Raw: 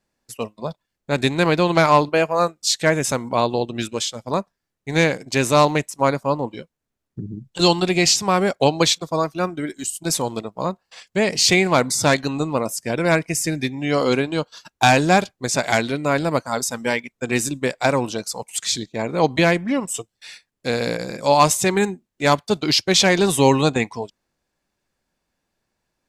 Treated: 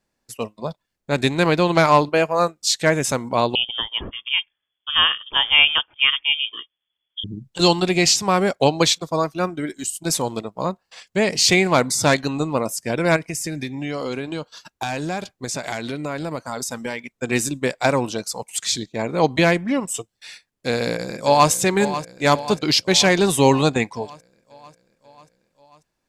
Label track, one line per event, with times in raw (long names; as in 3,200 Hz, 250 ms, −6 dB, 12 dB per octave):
3.550000	7.240000	voice inversion scrambler carrier 3,400 Hz
13.160000	17.120000	downward compressor, threshold −23 dBFS
20.720000	21.500000	delay throw 540 ms, feedback 65%, level −12 dB